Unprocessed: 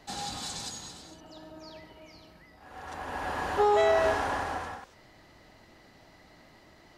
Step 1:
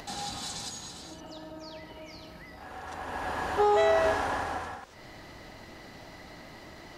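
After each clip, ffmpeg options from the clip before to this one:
-af "acompressor=mode=upward:threshold=-37dB:ratio=2.5"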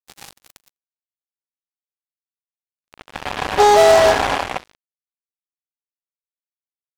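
-af "equalizer=f=700:t=o:w=1.1:g=5,acrusher=bits=3:mix=0:aa=0.5,volume=8.5dB"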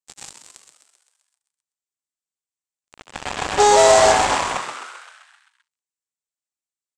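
-filter_complex "[0:a]lowpass=f=7.7k:t=q:w=3.9,asplit=2[a][b];[b]asplit=8[c][d][e][f][g][h][i][j];[c]adelay=130,afreqshift=110,volume=-8dB[k];[d]adelay=260,afreqshift=220,volume=-12.3dB[l];[e]adelay=390,afreqshift=330,volume=-16.6dB[m];[f]adelay=520,afreqshift=440,volume=-20.9dB[n];[g]adelay=650,afreqshift=550,volume=-25.2dB[o];[h]adelay=780,afreqshift=660,volume=-29.5dB[p];[i]adelay=910,afreqshift=770,volume=-33.8dB[q];[j]adelay=1040,afreqshift=880,volume=-38.1dB[r];[k][l][m][n][o][p][q][r]amix=inputs=8:normalize=0[s];[a][s]amix=inputs=2:normalize=0,volume=-2.5dB"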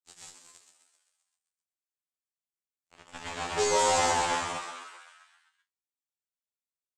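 -filter_complex "[0:a]asplit=2[a][b];[b]adelay=31,volume=-10.5dB[c];[a][c]amix=inputs=2:normalize=0,afftfilt=real='re*2*eq(mod(b,4),0)':imag='im*2*eq(mod(b,4),0)':win_size=2048:overlap=0.75,volume=-7.5dB"

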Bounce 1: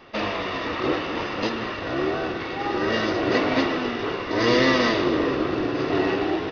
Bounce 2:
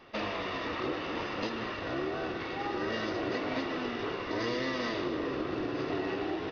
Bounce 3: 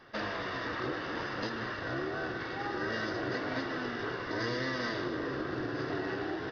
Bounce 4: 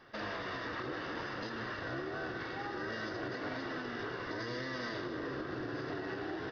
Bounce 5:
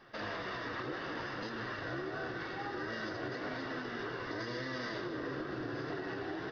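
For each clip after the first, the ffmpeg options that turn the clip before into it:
-af "acompressor=threshold=-23dB:ratio=6,volume=-6.5dB"
-af "equalizer=f=125:t=o:w=0.33:g=8,equalizer=f=1.6k:t=o:w=0.33:g=11,equalizer=f=2.5k:t=o:w=0.33:g=-7,equalizer=f=5k:t=o:w=0.33:g=5,volume=-2.5dB"
-af "alimiter=level_in=3.5dB:limit=-24dB:level=0:latency=1:release=90,volume=-3.5dB,volume=-2.5dB"
-af "flanger=delay=4.7:depth=3.6:regen=-54:speed=2:shape=triangular,volume=4dB"

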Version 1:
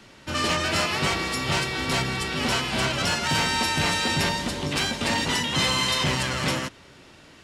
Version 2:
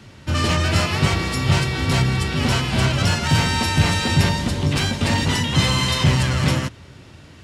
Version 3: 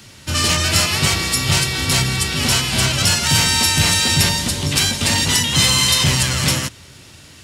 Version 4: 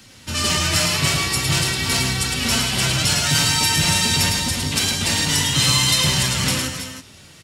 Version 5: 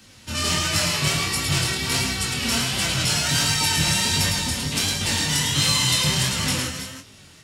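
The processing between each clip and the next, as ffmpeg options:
-af "equalizer=f=94:t=o:w=1.8:g=14.5,volume=1.5dB"
-af "crystalizer=i=5:c=0,volume=-2dB"
-af "flanger=delay=3.8:depth=3.3:regen=45:speed=0.45:shape=sinusoidal,aecho=1:1:108|316|327:0.596|0.251|0.266"
-af "flanger=delay=19:depth=7.8:speed=1.4"

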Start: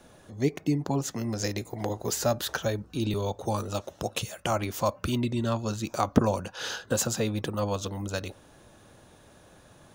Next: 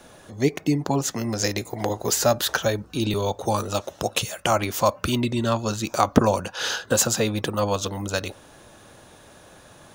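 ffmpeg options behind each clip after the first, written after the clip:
-af "lowshelf=f=380:g=-5.5,volume=8dB"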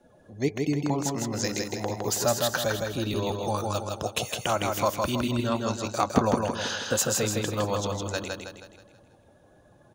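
-filter_complex "[0:a]afftdn=nr=17:nf=-44,asplit=2[a][b];[b]aecho=0:1:160|320|480|640|800|960:0.668|0.301|0.135|0.0609|0.0274|0.0123[c];[a][c]amix=inputs=2:normalize=0,volume=-5.5dB"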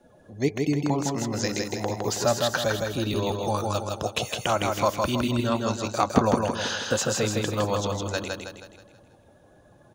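-filter_complex "[0:a]acrossover=split=6700[a][b];[b]acompressor=threshold=-43dB:ratio=4:attack=1:release=60[c];[a][c]amix=inputs=2:normalize=0,volume=2dB"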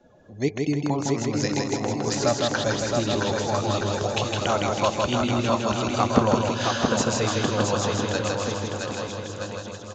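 -filter_complex "[0:a]asplit=2[a][b];[b]aecho=0:1:670|1273|1816|2304|2744:0.631|0.398|0.251|0.158|0.1[c];[a][c]amix=inputs=2:normalize=0,aresample=16000,aresample=44100"

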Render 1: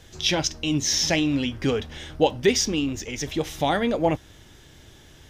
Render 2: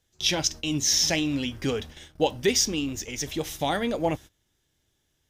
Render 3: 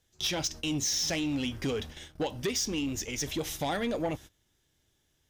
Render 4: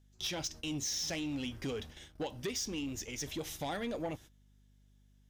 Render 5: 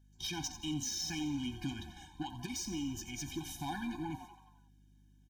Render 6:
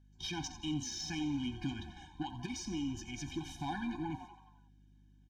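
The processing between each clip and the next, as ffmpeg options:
-af "agate=range=-21dB:threshold=-36dB:ratio=16:detection=peak,highshelf=f=6.2k:g=11,volume=-4dB"
-af "acompressor=threshold=-24dB:ratio=6,asoftclip=type=tanh:threshold=-24dB"
-af "aeval=exprs='val(0)+0.00141*(sin(2*PI*50*n/s)+sin(2*PI*2*50*n/s)/2+sin(2*PI*3*50*n/s)/3+sin(2*PI*4*50*n/s)/4+sin(2*PI*5*50*n/s)/5)':c=same,volume=-6.5dB"
-filter_complex "[0:a]asplit=2[a][b];[b]asplit=6[c][d][e][f][g][h];[c]adelay=88,afreqshift=110,volume=-12dB[i];[d]adelay=176,afreqshift=220,volume=-17dB[j];[e]adelay=264,afreqshift=330,volume=-22.1dB[k];[f]adelay=352,afreqshift=440,volume=-27.1dB[l];[g]adelay=440,afreqshift=550,volume=-32.1dB[m];[h]adelay=528,afreqshift=660,volume=-37.2dB[n];[i][j][k][l][m][n]amix=inputs=6:normalize=0[o];[a][o]amix=inputs=2:normalize=0,afftfilt=real='re*eq(mod(floor(b*sr/1024/360),2),0)':imag='im*eq(mod(floor(b*sr/1024/360),2),0)':win_size=1024:overlap=0.75,volume=1dB"
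-af "adynamicsmooth=sensitivity=2:basefreq=5.6k,volume=1dB"

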